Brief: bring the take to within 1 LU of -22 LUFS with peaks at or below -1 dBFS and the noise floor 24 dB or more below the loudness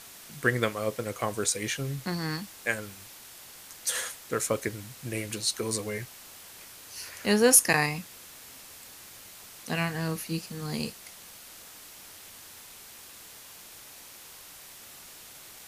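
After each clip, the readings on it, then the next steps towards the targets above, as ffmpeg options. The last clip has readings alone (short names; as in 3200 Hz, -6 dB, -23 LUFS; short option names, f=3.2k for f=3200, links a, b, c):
noise floor -48 dBFS; noise floor target -53 dBFS; loudness -28.5 LUFS; peak -4.5 dBFS; loudness target -22.0 LUFS
-> -af "afftdn=nr=6:nf=-48"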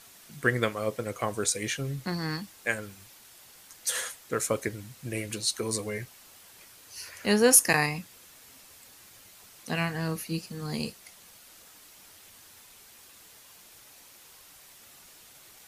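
noise floor -54 dBFS; loudness -28.0 LUFS; peak -4.5 dBFS; loudness target -22.0 LUFS
-> -af "volume=6dB,alimiter=limit=-1dB:level=0:latency=1"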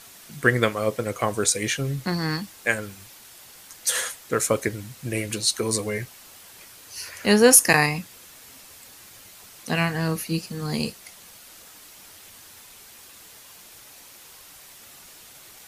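loudness -22.5 LUFS; peak -1.0 dBFS; noise floor -48 dBFS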